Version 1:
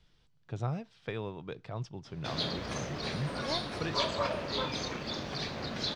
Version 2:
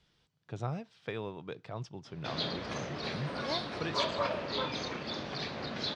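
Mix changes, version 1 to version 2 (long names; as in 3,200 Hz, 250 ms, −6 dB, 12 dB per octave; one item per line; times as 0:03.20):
background: add low-pass filter 5,000 Hz 12 dB per octave
master: add high-pass filter 130 Hz 6 dB per octave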